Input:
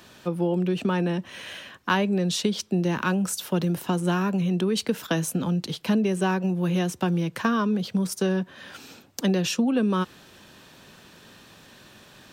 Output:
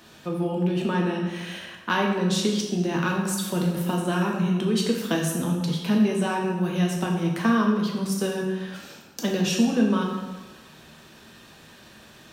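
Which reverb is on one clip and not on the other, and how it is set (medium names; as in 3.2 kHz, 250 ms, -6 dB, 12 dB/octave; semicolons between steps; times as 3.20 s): plate-style reverb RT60 1.2 s, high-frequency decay 0.75×, DRR -1 dB; trim -2.5 dB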